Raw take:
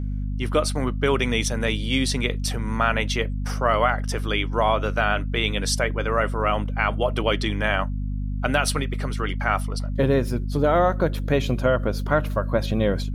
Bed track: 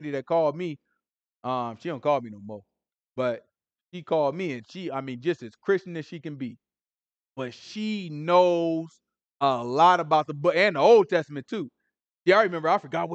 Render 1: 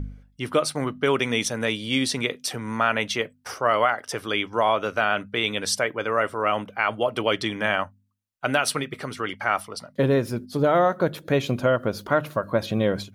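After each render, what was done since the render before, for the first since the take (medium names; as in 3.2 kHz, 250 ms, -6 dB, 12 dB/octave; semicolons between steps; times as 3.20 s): de-hum 50 Hz, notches 5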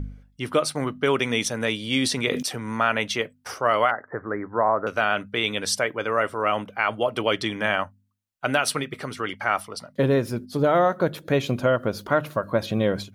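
1.89–2.47 s: decay stretcher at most 44 dB/s; 3.91–4.87 s: steep low-pass 1.9 kHz 96 dB/octave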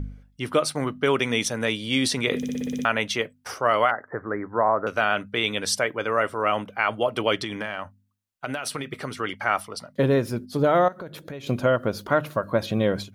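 2.37 s: stutter in place 0.06 s, 8 plays; 7.35–8.93 s: compression 10:1, threshold -25 dBFS; 10.88–11.47 s: compression 5:1, threshold -34 dBFS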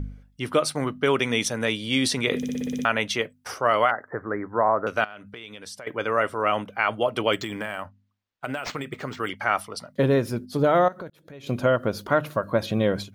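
5.04–5.87 s: compression 5:1, threshold -38 dBFS; 7.33–9.29 s: decimation joined by straight lines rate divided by 4×; 11.10–11.62 s: fade in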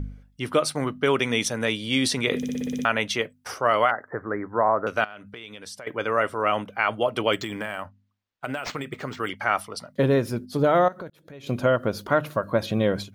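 no audible change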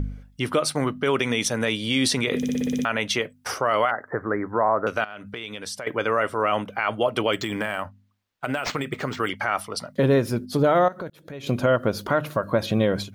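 in parallel at 0 dB: compression, threshold -31 dBFS, peak gain reduction 15 dB; on the sum: peak limiter -10.5 dBFS, peak gain reduction 5.5 dB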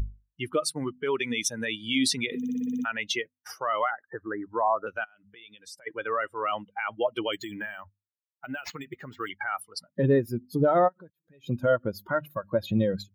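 expander on every frequency bin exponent 2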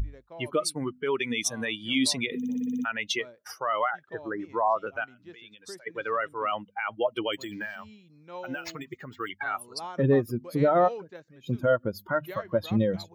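add bed track -21.5 dB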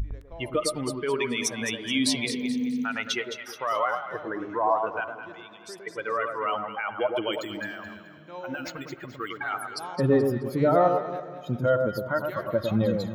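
echo whose repeats swap between lows and highs 107 ms, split 1.3 kHz, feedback 58%, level -4 dB; spring tank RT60 3.6 s, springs 46/55 ms, chirp 45 ms, DRR 17.5 dB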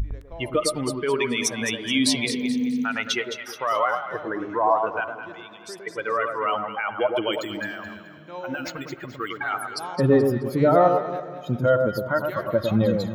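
trim +3.5 dB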